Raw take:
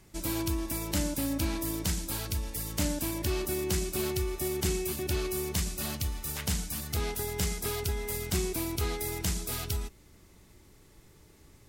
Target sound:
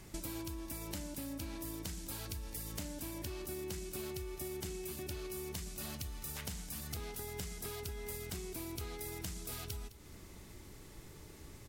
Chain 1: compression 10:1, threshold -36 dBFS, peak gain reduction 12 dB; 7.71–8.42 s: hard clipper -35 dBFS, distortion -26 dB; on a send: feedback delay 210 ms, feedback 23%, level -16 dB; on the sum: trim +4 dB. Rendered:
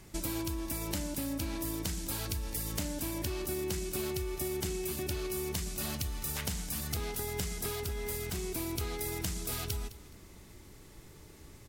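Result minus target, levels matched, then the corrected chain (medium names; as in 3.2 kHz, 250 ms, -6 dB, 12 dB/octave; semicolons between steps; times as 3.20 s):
compression: peak gain reduction -7 dB
compression 10:1, threshold -44 dBFS, peak gain reduction 19.5 dB; 7.71–8.42 s: hard clipper -35 dBFS, distortion -41 dB; on a send: feedback delay 210 ms, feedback 23%, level -16 dB; on the sum: trim +4 dB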